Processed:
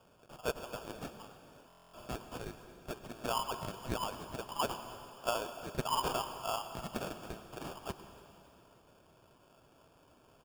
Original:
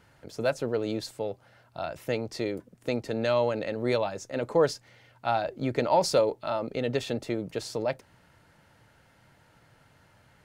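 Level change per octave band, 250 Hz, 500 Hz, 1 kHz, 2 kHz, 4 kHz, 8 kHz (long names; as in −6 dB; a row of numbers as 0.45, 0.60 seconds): −13.0, −15.0, −5.5, −8.5, −4.5, −3.5 decibels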